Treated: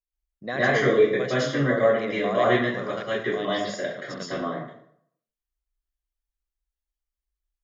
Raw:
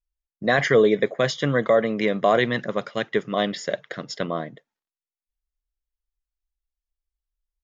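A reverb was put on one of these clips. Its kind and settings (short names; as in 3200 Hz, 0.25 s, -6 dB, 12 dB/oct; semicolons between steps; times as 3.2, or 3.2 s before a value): plate-style reverb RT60 0.66 s, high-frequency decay 0.65×, pre-delay 0.1 s, DRR -10 dB; gain -11.5 dB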